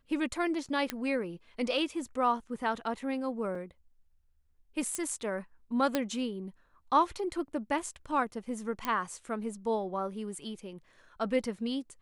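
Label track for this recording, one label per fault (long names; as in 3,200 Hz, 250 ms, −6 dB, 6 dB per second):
0.900000	0.900000	click −15 dBFS
3.550000	3.550000	drop-out 3.3 ms
4.950000	4.950000	click −17 dBFS
5.950000	5.950000	click −13 dBFS
8.850000	8.850000	click −16 dBFS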